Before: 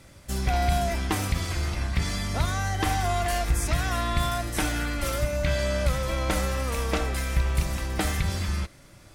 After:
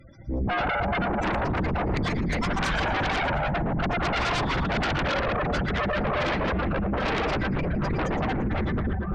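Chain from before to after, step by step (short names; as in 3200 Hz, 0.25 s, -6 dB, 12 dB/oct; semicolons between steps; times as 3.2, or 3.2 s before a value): random spectral dropouts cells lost 22%; bell 12000 Hz -6.5 dB 0.92 oct; plate-style reverb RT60 4 s, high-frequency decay 0.4×, pre-delay 95 ms, DRR -6 dB; in parallel at -11 dB: pump 150 bpm, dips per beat 1, -14 dB, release 66 ms; on the sum: reverb removal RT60 1.2 s; spectral gate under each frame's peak -15 dB strong; thinning echo 0.115 s, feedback 51%, high-pass 270 Hz, level -9.5 dB; limiter -18 dBFS, peak gain reduction 10.5 dB; sine folder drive 9 dB, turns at -18 dBFS; high shelf 6900 Hz +5 dB; upward expander 1.5:1, over -35 dBFS; gain -4 dB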